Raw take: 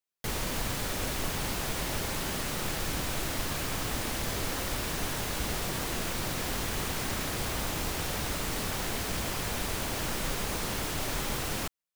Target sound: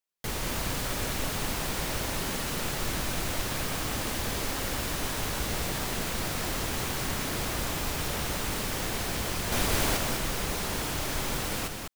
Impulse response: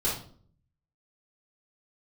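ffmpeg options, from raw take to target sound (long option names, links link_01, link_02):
-filter_complex "[0:a]asettb=1/sr,asplit=3[link_01][link_02][link_03];[link_01]atrim=end=9.524[link_04];[link_02]atrim=start=9.52:end=9.97,asetpts=PTS-STARTPTS,afade=type=in:duration=0.004:curve=qsin,afade=type=out:start_time=0.446:duration=0.004:curve=qsin,acontrast=35[link_05];[link_03]atrim=start=9.966[link_06];[link_04][link_05]acrossfade=duration=0.004:curve1=hsin:curve2=qsin[link_07];[link_07][link_06]acrossfade=duration=0.004:curve1=qsin:curve2=hsin,aecho=1:1:200:0.596"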